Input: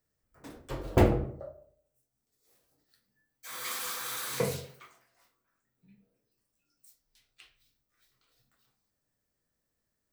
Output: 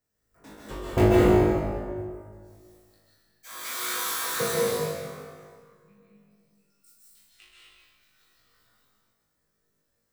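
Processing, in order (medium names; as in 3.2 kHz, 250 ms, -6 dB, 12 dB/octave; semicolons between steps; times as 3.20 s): on a send: flutter echo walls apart 3.3 m, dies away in 0.47 s; on the sum: plate-style reverb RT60 2 s, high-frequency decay 0.65×, pre-delay 120 ms, DRR -5.5 dB; trim -2.5 dB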